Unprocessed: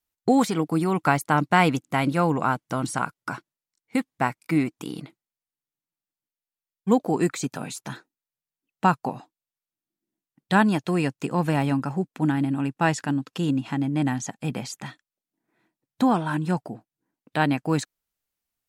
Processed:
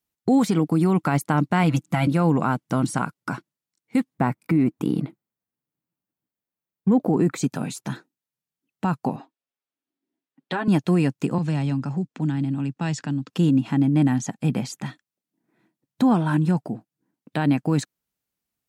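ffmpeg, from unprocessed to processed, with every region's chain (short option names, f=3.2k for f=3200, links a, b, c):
-filter_complex "[0:a]asettb=1/sr,asplit=3[a][b][c];[a]atrim=end=1.634[d];[b]atrim=start=1.63:end=2.07,asetpts=PTS-STARTPTS,afade=t=in:d=0.004:c=qsin,afade=t=out:st=0.436:d=0.004:c=qsin,equalizer=f=410:w=3.7:g=-12.5,aecho=1:1:6:0.84,atrim=end_sample=19404[e];[c]atrim=start=2.066[f];[d][e]acrossfade=d=0.004:c1=hsin:c2=qsin[g];[g][f]acrossfade=d=0.004:c1=qsin:c2=hsin,asettb=1/sr,asplit=3[h][i][j];[h]atrim=end=4.144[k];[i]atrim=start=4.14:end=7.38,asetpts=PTS-STARTPTS,afade=t=in:d=0.004:c=qsin,afade=t=out:st=3.236:d=0.004:c=qsin,equalizer=f=6.1k:w=0.36:g=-11,acontrast=31[l];[j]atrim=start=7.376[m];[k][l]acrossfade=d=0.004:c1=hsin:c2=qsin[n];[n][m]acrossfade=d=0.004:c1=qsin:c2=hsin,asettb=1/sr,asplit=3[o][p][q];[o]atrim=end=9.164[r];[p]atrim=start=9.16:end=10.68,asetpts=PTS-STARTPTS,afade=t=in:d=0.004:c=qsin,afade=t=out:st=1.516:d=0.004:c=qsin,acrossover=split=230 4400:gain=0.0631 1 0.2[s][t][u];[s][t][u]amix=inputs=3:normalize=0,acompressor=threshold=-25dB:ratio=4:attack=3.2:release=140:knee=1:detection=peak,aecho=1:1:7.4:0.69,atrim=end_sample=67032[v];[q]atrim=start=10.676[w];[r][v]acrossfade=d=0.004:c1=hsin:c2=qsin[x];[x][w]acrossfade=d=0.004:c1=qsin:c2=hsin,asettb=1/sr,asplit=3[y][z][aa];[y]atrim=end=11.384[ab];[z]atrim=start=11.38:end=13.3,asetpts=PTS-STARTPTS,afade=t=in:d=0.004:c=qsin,afade=t=out:st=1.916:d=0.004:c=qsin,lowpass=f=7.6k:w=0.5412,lowpass=f=7.6k:w=1.3066,acrossover=split=130|3000[ac][ad][ae];[ad]acompressor=threshold=-38dB:ratio=2:attack=3.2:release=140:knee=2.83:detection=peak[af];[ac][af][ae]amix=inputs=3:normalize=0[ag];[aa]atrim=start=13.296[ah];[ab][ag]acrossfade=d=0.004:c1=hsin:c2=qsin[ai];[ai][ah]acrossfade=d=0.004:c1=qsin:c2=hsin,highpass=42,equalizer=f=190:w=0.68:g=8,alimiter=limit=-11.5dB:level=0:latency=1:release=46"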